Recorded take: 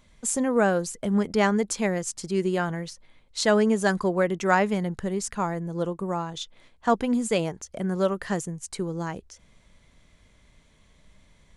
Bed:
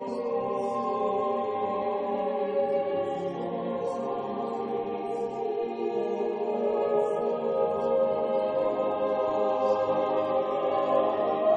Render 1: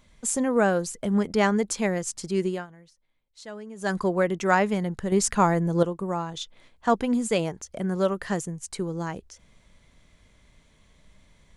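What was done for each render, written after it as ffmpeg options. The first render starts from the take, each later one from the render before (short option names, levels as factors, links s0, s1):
-filter_complex "[0:a]asplit=5[s0][s1][s2][s3][s4];[s0]atrim=end=2.67,asetpts=PTS-STARTPTS,afade=t=out:st=2.44:d=0.23:silence=0.112202[s5];[s1]atrim=start=2.67:end=3.75,asetpts=PTS-STARTPTS,volume=0.112[s6];[s2]atrim=start=3.75:end=5.122,asetpts=PTS-STARTPTS,afade=t=in:d=0.23:silence=0.112202[s7];[s3]atrim=start=5.118:end=5.832,asetpts=PTS-STARTPTS,volume=2.24[s8];[s4]atrim=start=5.828[s9];[s5][s6][s7]concat=n=3:v=0:a=1[s10];[s10][s8]acrossfade=d=0.004:c1=hsin:c2=hsin[s11];[s11][s9]acrossfade=d=0.004:c1=hsin:c2=hsin"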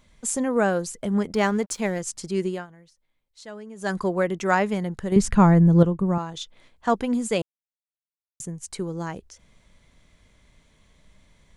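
-filter_complex "[0:a]asettb=1/sr,asplit=3[s0][s1][s2];[s0]atrim=end=1.344[s3];[s1]atrim=start=1.34:end=2,asetpts=PTS-STARTPTS,afade=t=in:d=0.004:c=qsin,afade=t=out:st=0.656:d=0.004:c=qsin,aeval=exprs='sgn(val(0))*max(abs(val(0))-0.00473,0)':c=same[s4];[s2]atrim=start=1.996[s5];[s3][s4]acrossfade=d=0.004:c1=hsin:c2=qsin[s6];[s6][s5]acrossfade=d=0.004:c1=qsin:c2=hsin,asettb=1/sr,asplit=3[s7][s8][s9];[s7]atrim=end=5.164[s10];[s8]atrim=start=5.16:end=6.18,asetpts=PTS-STARTPTS,afade=t=in:d=0.004:c=qsin,afade=t=out:st=1.016:d=0.004:c=qsin,bass=f=250:g=13,treble=f=4000:g=-6[s11];[s9]atrim=start=6.176[s12];[s10][s11]acrossfade=d=0.004:c1=hsin:c2=qsin[s13];[s13][s12]acrossfade=d=0.004:c1=qsin:c2=hsin,asplit=3[s14][s15][s16];[s14]atrim=end=7.42,asetpts=PTS-STARTPTS,afade=t=out:st=7.416:d=0.004:c=hsin[s17];[s15]atrim=start=7.42:end=8.4,asetpts=PTS-STARTPTS,volume=0[s18];[s16]atrim=start=8.4,asetpts=PTS-STARTPTS,afade=t=in:d=0.004:c=hsin[s19];[s17][s18][s19]concat=n=3:v=0:a=1"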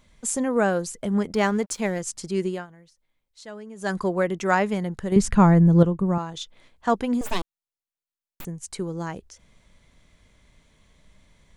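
-filter_complex "[0:a]asettb=1/sr,asplit=3[s0][s1][s2];[s0]atrim=end=7.214[s3];[s1]atrim=start=7.21:end=8.45,asetpts=PTS-STARTPTS,afade=t=in:d=0.004:c=qsin,afade=t=out:st=1.236:d=0.004:c=qsin,aeval=exprs='abs(val(0))':c=same[s4];[s2]atrim=start=8.446[s5];[s3][s4]acrossfade=d=0.004:c1=hsin:c2=qsin[s6];[s6][s5]acrossfade=d=0.004:c1=qsin:c2=hsin"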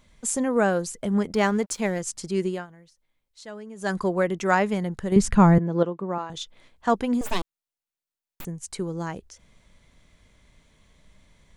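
-filter_complex "[0:a]asettb=1/sr,asplit=3[s0][s1][s2];[s0]atrim=end=5.584[s3];[s1]atrim=start=5.58:end=6.3,asetpts=PTS-STARTPTS,afade=t=in:d=0.004:c=qsin,afade=t=out:st=0.716:d=0.004:c=qsin,highpass=340,lowpass=4400[s4];[s2]atrim=start=6.296[s5];[s3][s4]acrossfade=d=0.004:c1=hsin:c2=qsin[s6];[s6][s5]acrossfade=d=0.004:c1=qsin:c2=hsin"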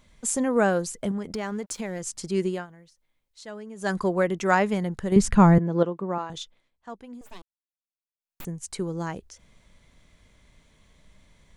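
-filter_complex "[0:a]asettb=1/sr,asplit=3[s0][s1][s2];[s0]atrim=end=1.114[s3];[s1]atrim=start=1.11:end=2.24,asetpts=PTS-STARTPTS,afade=t=in:d=0.004:c=qsin,afade=t=out:st=1.126:d=0.004:c=qsin,acompressor=threshold=0.0398:ratio=4:attack=3.2:release=140:knee=1:detection=peak[s4];[s2]atrim=start=2.236[s5];[s3][s4]acrossfade=d=0.004:c1=hsin:c2=qsin[s6];[s6][s5]acrossfade=d=0.004:c1=qsin:c2=hsin,asplit=3[s7][s8][s9];[s7]atrim=end=6.62,asetpts=PTS-STARTPTS,afade=t=out:st=6.33:d=0.29:silence=0.125893[s10];[s8]atrim=start=6.62:end=8.18,asetpts=PTS-STARTPTS,volume=0.126[s11];[s9]atrim=start=8.18,asetpts=PTS-STARTPTS,afade=t=in:d=0.29:silence=0.125893[s12];[s10][s11][s12]concat=n=3:v=0:a=1"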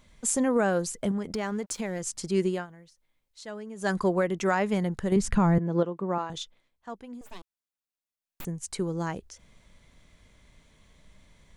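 -af "alimiter=limit=0.2:level=0:latency=1:release=238"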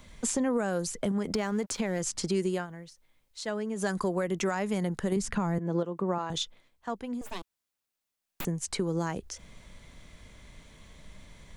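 -filter_complex "[0:a]acrossover=split=170|5900[s0][s1][s2];[s0]acompressor=threshold=0.00501:ratio=4[s3];[s1]acompressor=threshold=0.0224:ratio=4[s4];[s2]acompressor=threshold=0.00501:ratio=4[s5];[s3][s4][s5]amix=inputs=3:normalize=0,asplit=2[s6][s7];[s7]alimiter=level_in=1.68:limit=0.0631:level=0:latency=1:release=182,volume=0.596,volume=1.19[s8];[s6][s8]amix=inputs=2:normalize=0"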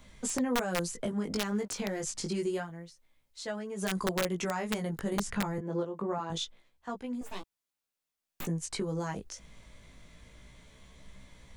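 -af "flanger=delay=15.5:depth=4.4:speed=0.27,aeval=exprs='(mod(12.6*val(0)+1,2)-1)/12.6':c=same"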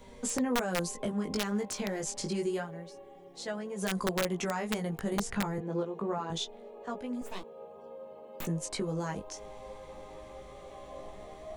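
-filter_complex "[1:a]volume=0.0841[s0];[0:a][s0]amix=inputs=2:normalize=0"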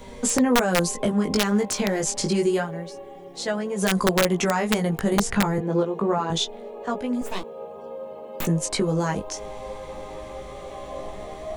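-af "volume=3.35"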